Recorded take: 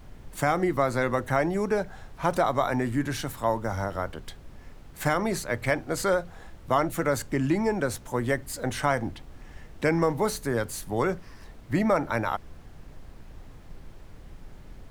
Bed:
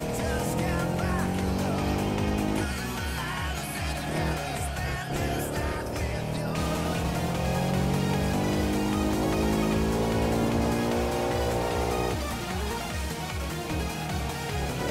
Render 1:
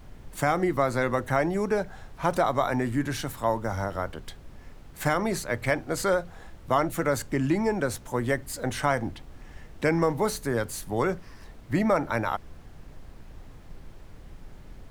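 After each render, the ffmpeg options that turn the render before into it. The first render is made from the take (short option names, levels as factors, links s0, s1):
-af anull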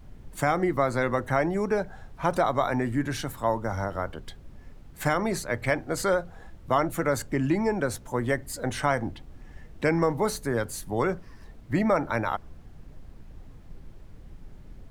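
-af "afftdn=nr=6:nf=-48"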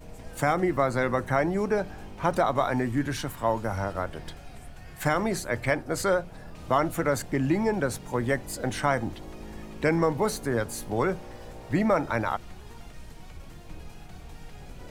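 -filter_complex "[1:a]volume=0.126[s0];[0:a][s0]amix=inputs=2:normalize=0"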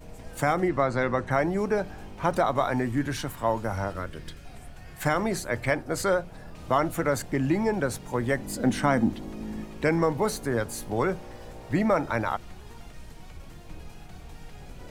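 -filter_complex "[0:a]asettb=1/sr,asplit=3[s0][s1][s2];[s0]atrim=end=0.684[s3];[s1]atrim=start=0.68:end=1.31,asetpts=PTS-STARTPTS,afade=t=in:d=0.004:c=qsin,afade=t=out:st=0.626:d=0.004:c=qsin,lowpass=6200[s4];[s2]atrim=start=1.306[s5];[s3][s4]acrossfade=d=0.004:c1=hsin:c2=qsin[s6];[s6][s5]acrossfade=d=0.004:c1=qsin:c2=hsin,asettb=1/sr,asplit=3[s7][s8][s9];[s7]atrim=end=3.944[s10];[s8]atrim=start=3.94:end=4.45,asetpts=PTS-STARTPTS,afade=t=in:d=0.004:c=qsin,afade=t=out:st=0.506:d=0.004:c=qsin,equalizer=f=770:w=2.2:g=-13.5[s11];[s9]atrim=start=4.446[s12];[s10][s11]acrossfade=d=0.004:c1=hsin:c2=qsin[s13];[s13][s12]acrossfade=d=0.004:c1=qsin:c2=hsin,asettb=1/sr,asplit=3[s14][s15][s16];[s14]atrim=end=8.394[s17];[s15]atrim=start=8.39:end=9.64,asetpts=PTS-STARTPTS,afade=t=in:d=0.004:c=qsin,afade=t=out:st=1.246:d=0.004:c=qsin,equalizer=f=230:t=o:w=0.77:g=12[s18];[s16]atrim=start=9.636[s19];[s17][s18]acrossfade=d=0.004:c1=hsin:c2=qsin[s20];[s20][s19]acrossfade=d=0.004:c1=qsin:c2=hsin"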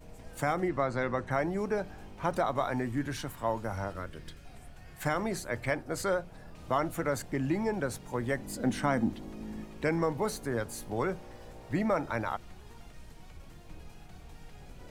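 -af "volume=0.531"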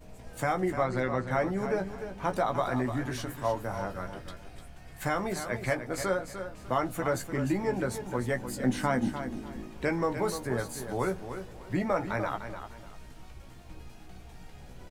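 -filter_complex "[0:a]asplit=2[s0][s1];[s1]adelay=16,volume=0.473[s2];[s0][s2]amix=inputs=2:normalize=0,aecho=1:1:299|598|897:0.335|0.0871|0.0226"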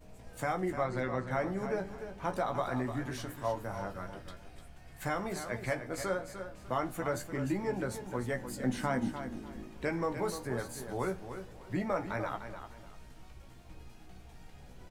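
-af "flanger=delay=9.8:depth=8.3:regen=-80:speed=0.26:shape=sinusoidal"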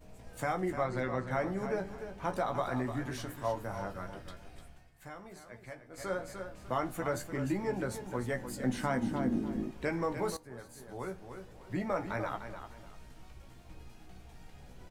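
-filter_complex "[0:a]asettb=1/sr,asplit=3[s0][s1][s2];[s0]atrim=end=9.114[s3];[s1]atrim=start=9.11:end=9.71,asetpts=PTS-STARTPTS,afade=t=in:d=0.004:c=qsin,afade=t=out:st=0.596:d=0.004:c=qsin,equalizer=f=240:w=0.5:g=11.5[s4];[s2]atrim=start=9.706[s5];[s3][s4]acrossfade=d=0.004:c1=hsin:c2=qsin[s6];[s6][s5]acrossfade=d=0.004:c1=qsin:c2=hsin,asplit=4[s7][s8][s9][s10];[s7]atrim=end=4.91,asetpts=PTS-STARTPTS,afade=t=out:st=4.56:d=0.35:c=qsin:silence=0.223872[s11];[s8]atrim=start=4.91:end=5.93,asetpts=PTS-STARTPTS,volume=0.224[s12];[s9]atrim=start=5.93:end=10.37,asetpts=PTS-STARTPTS,afade=t=in:d=0.35:c=qsin:silence=0.223872,afade=t=out:st=4.436:d=0.004:c=hsin:silence=0.177828[s13];[s10]atrim=start=10.37,asetpts=PTS-STARTPTS,afade=t=in:d=1.69:silence=0.177828[s14];[s11][s12][s13][s14]concat=n=4:v=0:a=1"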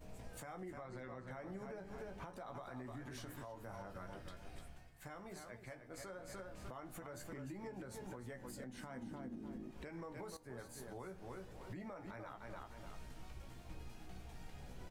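-af "acompressor=threshold=0.0112:ratio=6,alimiter=level_in=5.96:limit=0.0631:level=0:latency=1:release=247,volume=0.168"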